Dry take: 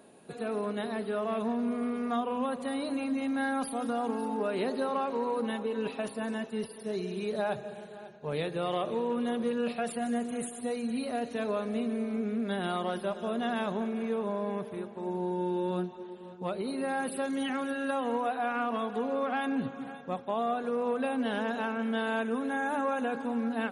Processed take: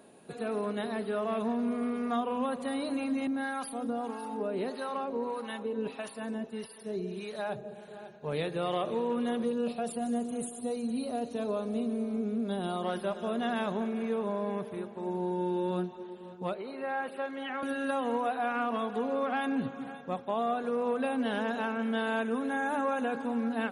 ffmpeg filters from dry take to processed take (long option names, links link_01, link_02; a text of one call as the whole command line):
ffmpeg -i in.wav -filter_complex "[0:a]asettb=1/sr,asplit=3[link_01][link_02][link_03];[link_01]atrim=end=3.274[link_04];[link_02]atrim=start=3.27:end=7.88,asetpts=PTS-STARTPTS,afade=type=in:duration=0.004:curve=qsin,afade=type=out:start_time=4.606:duration=0.004:curve=qsin,acrossover=split=720[link_05][link_06];[link_05]aeval=exprs='val(0)*(1-0.7/2+0.7/2*cos(2*PI*1.6*n/s))':channel_layout=same[link_07];[link_06]aeval=exprs='val(0)*(1-0.7/2-0.7/2*cos(2*PI*1.6*n/s))':channel_layout=same[link_08];[link_07][link_08]amix=inputs=2:normalize=0[link_09];[link_03]atrim=start=7.876[link_10];[link_04][link_09]acrossfade=duration=0.004:curve1=hsin:curve2=qsin[link_11];[link_11][link_10]acrossfade=duration=0.004:curve1=qsin:curve2=hsin,asettb=1/sr,asplit=3[link_12][link_13][link_14];[link_12]atrim=end=9.454[link_15];[link_13]atrim=start=9.45:end=12.83,asetpts=PTS-STARTPTS,afade=type=in:duration=0.004:curve=qsin,afade=type=out:start_time=3.376:duration=0.004:curve=qsin,equalizer=frequency=1900:width=1.3:gain=-11.5[link_16];[link_14]atrim=start=12.826[link_17];[link_15][link_16]acrossfade=duration=0.004:curve1=hsin:curve2=qsin[link_18];[link_18][link_17]acrossfade=duration=0.004:curve1=qsin:curve2=hsin,asettb=1/sr,asplit=3[link_19][link_20][link_21];[link_19]atrim=end=16.544[link_22];[link_20]atrim=start=16.54:end=17.63,asetpts=PTS-STARTPTS,afade=type=in:duration=0.004:curve=qsin,afade=type=out:start_time=1.086:duration=0.004:curve=qsin,acrossover=split=410 3300:gain=0.224 1 0.0891[link_23][link_24][link_25];[link_23][link_24][link_25]amix=inputs=3:normalize=0[link_26];[link_21]atrim=start=17.626[link_27];[link_22][link_26]acrossfade=duration=0.004:curve1=hsin:curve2=qsin[link_28];[link_28][link_27]acrossfade=duration=0.004:curve1=qsin:curve2=hsin" out.wav